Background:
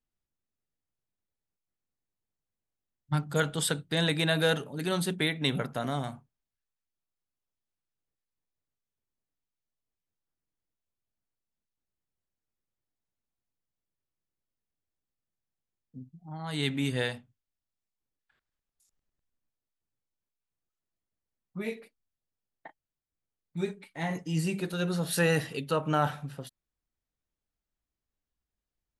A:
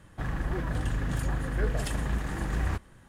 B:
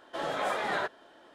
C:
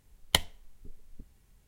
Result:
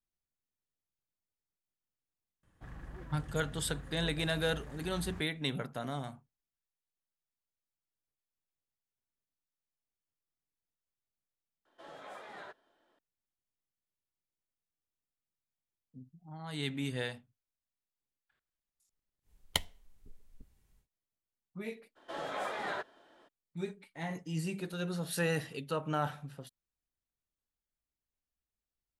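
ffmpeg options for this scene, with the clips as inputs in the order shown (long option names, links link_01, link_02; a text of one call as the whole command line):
ffmpeg -i bed.wav -i cue0.wav -i cue1.wav -i cue2.wav -filter_complex "[2:a]asplit=2[link_01][link_02];[0:a]volume=-6.5dB[link_03];[1:a]atrim=end=3.08,asetpts=PTS-STARTPTS,volume=-16.5dB,afade=type=in:duration=0.004:curve=hsin,afade=type=out:start_time=3.076:duration=0.004:curve=hsin,adelay=2430[link_04];[link_01]atrim=end=1.34,asetpts=PTS-STARTPTS,volume=-17.5dB,afade=type=in:duration=0.004:curve=hsin,afade=type=out:start_time=1.336:duration=0.004:curve=hsin,adelay=11650[link_05];[3:a]atrim=end=1.67,asetpts=PTS-STARTPTS,volume=-7.5dB,afade=type=in:duration=0.1,afade=type=out:start_time=1.57:duration=0.1,adelay=19210[link_06];[link_02]atrim=end=1.34,asetpts=PTS-STARTPTS,volume=-6.5dB,afade=type=in:duration=0.02,afade=type=out:start_time=1.32:duration=0.02,adelay=21950[link_07];[link_03][link_04][link_05][link_06][link_07]amix=inputs=5:normalize=0" out.wav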